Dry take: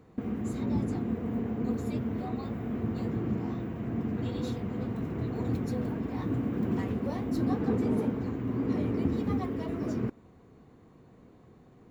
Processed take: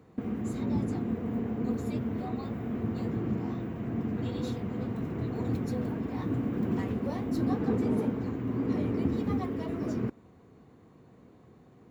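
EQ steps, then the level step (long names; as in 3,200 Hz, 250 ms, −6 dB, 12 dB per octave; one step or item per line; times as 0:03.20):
high-pass filter 61 Hz
0.0 dB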